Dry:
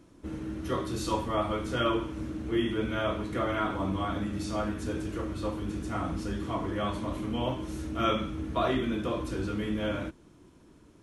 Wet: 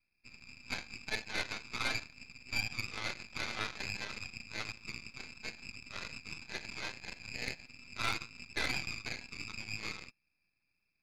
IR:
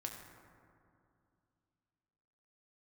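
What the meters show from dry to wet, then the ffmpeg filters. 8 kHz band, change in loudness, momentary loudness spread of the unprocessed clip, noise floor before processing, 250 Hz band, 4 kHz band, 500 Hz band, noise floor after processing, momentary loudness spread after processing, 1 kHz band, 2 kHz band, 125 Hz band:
0.0 dB, -8.0 dB, 7 LU, -57 dBFS, -20.5 dB, -1.0 dB, -19.0 dB, -82 dBFS, 12 LU, -13.0 dB, +2.0 dB, -15.0 dB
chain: -af "lowpass=f=2.3k:t=q:w=0.5098,lowpass=f=2.3k:t=q:w=0.6013,lowpass=f=2.3k:t=q:w=0.9,lowpass=f=2.3k:t=q:w=2.563,afreqshift=-2700,aeval=exprs='0.178*(cos(1*acos(clip(val(0)/0.178,-1,1)))-cos(1*PI/2))+0.0224*(cos(7*acos(clip(val(0)/0.178,-1,1)))-cos(7*PI/2))':c=same,aeval=exprs='max(val(0),0)':c=same,volume=-3.5dB"

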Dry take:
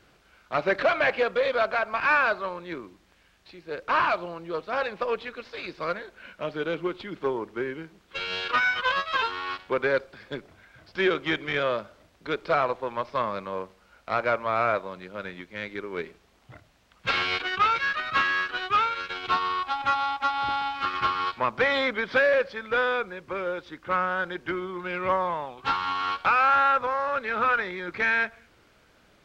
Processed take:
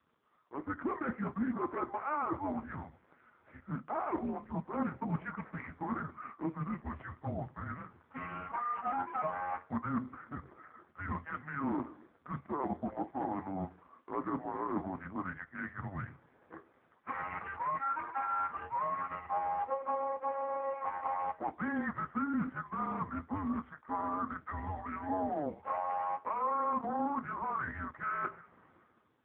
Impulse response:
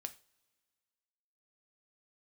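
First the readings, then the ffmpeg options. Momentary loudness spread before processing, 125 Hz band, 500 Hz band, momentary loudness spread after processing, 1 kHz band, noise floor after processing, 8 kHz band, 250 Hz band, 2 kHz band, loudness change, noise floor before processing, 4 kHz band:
14 LU, 0.0 dB, -14.0 dB, 10 LU, -8.5 dB, -68 dBFS, n/a, -0.5 dB, -18.0 dB, -11.0 dB, -61 dBFS, under -35 dB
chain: -filter_complex "[0:a]areverse,acompressor=threshold=-35dB:ratio=8,areverse,highpass=f=270:t=q:w=0.5412,highpass=f=270:t=q:w=1.307,lowpass=f=2.1k:t=q:w=0.5176,lowpass=f=2.1k:t=q:w=0.7071,lowpass=f=2.1k:t=q:w=1.932,afreqshift=-290,asplit=2[a][b];[b]acrusher=bits=2:mix=0:aa=0.5,volume=-11.5dB[c];[a][c]amix=inputs=2:normalize=0[d];[1:a]atrim=start_sample=2205,afade=t=out:st=0.31:d=0.01,atrim=end_sample=14112,asetrate=83790,aresample=44100[e];[d][e]afir=irnorm=-1:irlink=0,dynaudnorm=f=120:g=9:m=13.5dB" -ar 8000 -c:a libopencore_amrnb -b:a 5150

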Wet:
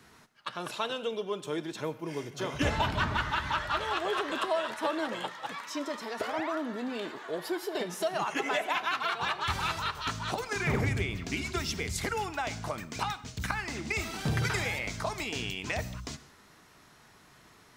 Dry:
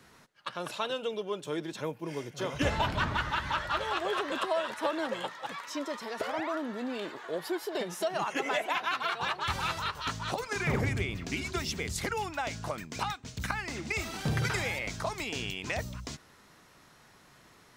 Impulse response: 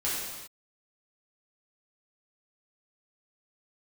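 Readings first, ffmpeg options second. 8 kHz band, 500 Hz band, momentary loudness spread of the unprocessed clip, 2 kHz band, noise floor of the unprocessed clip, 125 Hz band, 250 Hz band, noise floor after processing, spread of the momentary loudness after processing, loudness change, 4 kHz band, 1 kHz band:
+0.5 dB, 0.0 dB, 8 LU, +1.0 dB, -59 dBFS, +1.0 dB, +0.5 dB, -58 dBFS, 8 LU, +0.5 dB, +1.0 dB, +0.5 dB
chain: -filter_complex "[0:a]bandreject=f=540:w=12,asplit=2[a][b];[1:a]atrim=start_sample=2205,atrim=end_sample=6174,asetrate=33957,aresample=44100[c];[b][c]afir=irnorm=-1:irlink=0,volume=-22.5dB[d];[a][d]amix=inputs=2:normalize=0"

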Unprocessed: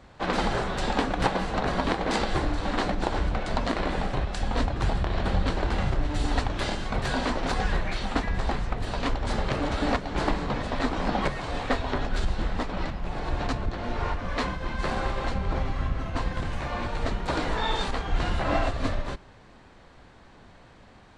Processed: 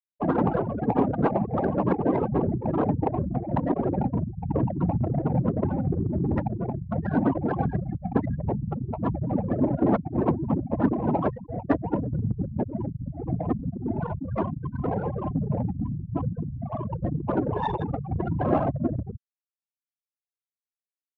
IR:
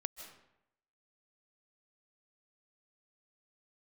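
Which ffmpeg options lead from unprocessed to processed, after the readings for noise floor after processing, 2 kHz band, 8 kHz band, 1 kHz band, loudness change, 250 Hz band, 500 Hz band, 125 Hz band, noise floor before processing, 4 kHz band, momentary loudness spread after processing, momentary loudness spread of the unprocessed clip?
under -85 dBFS, -11.5 dB, under -35 dB, -1.5 dB, +2.0 dB, +6.0 dB, +2.5 dB, +4.5 dB, -52 dBFS, under -20 dB, 6 LU, 5 LU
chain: -af "afftfilt=real='hypot(re,im)*cos(2*PI*random(0))':imag='hypot(re,im)*sin(2*PI*random(1))':win_size=512:overlap=0.75,afftfilt=real='re*gte(hypot(re,im),0.0501)':imag='im*gte(hypot(re,im),0.0501)':win_size=1024:overlap=0.75,asoftclip=type=hard:threshold=-25.5dB,highpass=170,aemphasis=mode=production:type=50kf,adynamicsmooth=sensitivity=5.5:basefreq=860,lowpass=2.2k,lowshelf=f=490:g=11.5,volume=5.5dB"

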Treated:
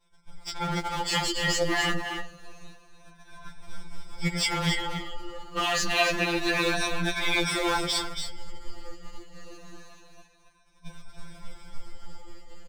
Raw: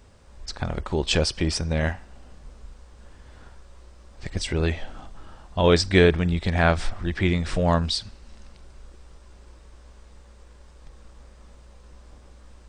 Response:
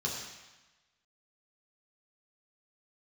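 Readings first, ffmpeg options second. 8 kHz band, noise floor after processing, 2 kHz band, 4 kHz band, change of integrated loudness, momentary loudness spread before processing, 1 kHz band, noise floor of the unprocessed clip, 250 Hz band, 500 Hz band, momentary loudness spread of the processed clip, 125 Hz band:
+3.0 dB, -59 dBFS, +2.0 dB, +1.5 dB, -3.5 dB, 17 LU, +0.5 dB, -50 dBFS, -6.0 dB, -7.5 dB, 15 LU, -10.5 dB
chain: -filter_complex "[0:a]afftfilt=real='re*pow(10,24/40*sin(2*PI*(1.6*log(max(b,1)*sr/1024/100)/log(2)-(-0.27)*(pts-256)/sr)))':imag='im*pow(10,24/40*sin(2*PI*(1.6*log(max(b,1)*sr/1024/100)/log(2)-(-0.27)*(pts-256)/sr)))':win_size=1024:overlap=0.75,highshelf=f=3.9k:g=8.5,asplit=2[a][b];[b]acrusher=bits=4:dc=4:mix=0:aa=0.000001,volume=-3.5dB[c];[a][c]amix=inputs=2:normalize=0,afftfilt=real='re*lt(hypot(re,im),0.562)':imag='im*lt(hypot(re,im),0.562)':win_size=1024:overlap=0.75,aemphasis=mode=reproduction:type=50kf,agate=range=-33dB:threshold=-37dB:ratio=3:detection=peak,dynaudnorm=f=390:g=7:m=6dB,asplit=2[d][e];[e]aecho=0:1:278:0.398[f];[d][f]amix=inputs=2:normalize=0,flanger=delay=0.4:depth=8.8:regen=27:speed=0.85:shape=triangular,afftfilt=real='re*2.83*eq(mod(b,8),0)':imag='im*2.83*eq(mod(b,8),0)':win_size=2048:overlap=0.75"

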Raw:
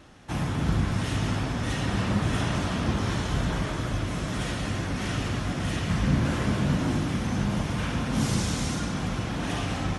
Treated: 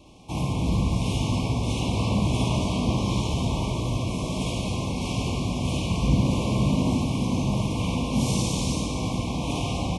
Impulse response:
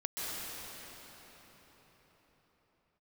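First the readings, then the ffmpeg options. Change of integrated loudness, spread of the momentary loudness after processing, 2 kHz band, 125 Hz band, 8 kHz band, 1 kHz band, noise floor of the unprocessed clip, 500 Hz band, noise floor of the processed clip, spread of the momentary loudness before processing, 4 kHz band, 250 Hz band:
+2.0 dB, 5 LU, -4.5 dB, +2.5 dB, +2.5 dB, +1.0 dB, -32 dBFS, +2.5 dB, -30 dBFS, 5 LU, +2.5 dB, +2.5 dB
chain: -filter_complex "[0:a]asuperstop=centerf=1600:order=20:qfactor=1.5,aecho=1:1:57|73:0.562|0.596,asplit=2[a][b];[1:a]atrim=start_sample=2205,adelay=94[c];[b][c]afir=irnorm=-1:irlink=0,volume=-16dB[d];[a][d]amix=inputs=2:normalize=0"

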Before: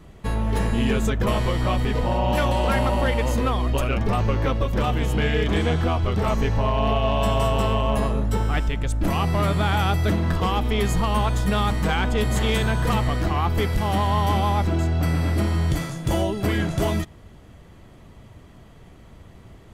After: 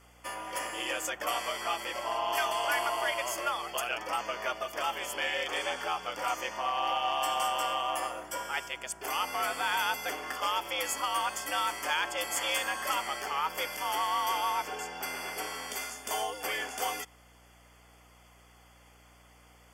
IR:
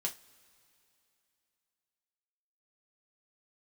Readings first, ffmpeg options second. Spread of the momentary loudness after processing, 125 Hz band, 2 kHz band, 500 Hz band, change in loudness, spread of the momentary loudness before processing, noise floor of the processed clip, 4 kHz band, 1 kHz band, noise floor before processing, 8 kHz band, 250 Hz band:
7 LU, under -35 dB, -3.0 dB, -12.0 dB, -9.0 dB, 3 LU, -58 dBFS, -2.5 dB, -4.5 dB, -47 dBFS, +1.5 dB, -24.0 dB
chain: -af "highpass=620,highshelf=f=3.5k:g=7.5,afreqshift=97,aeval=exprs='val(0)+0.00178*(sin(2*PI*60*n/s)+sin(2*PI*2*60*n/s)/2+sin(2*PI*3*60*n/s)/3+sin(2*PI*4*60*n/s)/4+sin(2*PI*5*60*n/s)/5)':c=same,asuperstop=centerf=3900:order=8:qfactor=4.4,volume=-5dB"

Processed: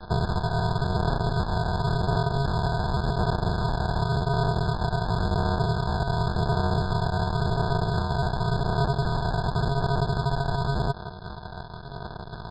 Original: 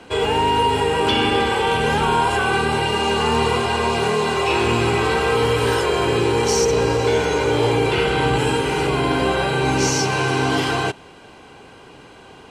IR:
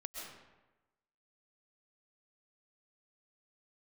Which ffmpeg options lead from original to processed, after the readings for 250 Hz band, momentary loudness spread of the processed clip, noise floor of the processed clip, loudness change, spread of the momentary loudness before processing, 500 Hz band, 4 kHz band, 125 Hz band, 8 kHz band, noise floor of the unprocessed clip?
-6.5 dB, 9 LU, -39 dBFS, -7.5 dB, 2 LU, -11.5 dB, -13.0 dB, +1.0 dB, under -20 dB, -44 dBFS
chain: -filter_complex "[0:a]bass=f=250:g=7,treble=f=4k:g=-4,acrossover=split=110|610[a][b][c];[a]acompressor=threshold=-33dB:ratio=4[d];[b]acompressor=threshold=-20dB:ratio=4[e];[c]acompressor=threshold=-24dB:ratio=4[f];[d][e][f]amix=inputs=3:normalize=0,aresample=11025,acrusher=samples=40:mix=1:aa=0.000001,aresample=44100,acompressor=threshold=-23dB:ratio=6,asplit=2[g][h];[h]highpass=f=720:p=1,volume=20dB,asoftclip=type=tanh:threshold=-12dB[i];[g][i]amix=inputs=2:normalize=0,lowpass=f=3.1k:p=1,volume=-6dB,aecho=1:1:1.2:0.35,aphaser=in_gain=1:out_gain=1:delay=1.3:decay=0.24:speed=0.91:type=sinusoidal,afftfilt=real='re*eq(mod(floor(b*sr/1024/1700),2),0)':imag='im*eq(mod(floor(b*sr/1024/1700),2),0)':win_size=1024:overlap=0.75"

